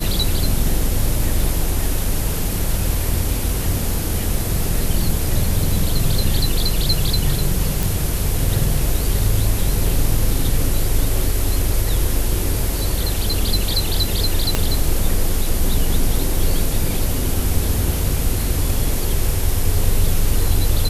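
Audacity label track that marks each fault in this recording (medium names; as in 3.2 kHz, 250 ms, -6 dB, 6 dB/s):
7.830000	7.830000	pop
14.550000	14.550000	pop -3 dBFS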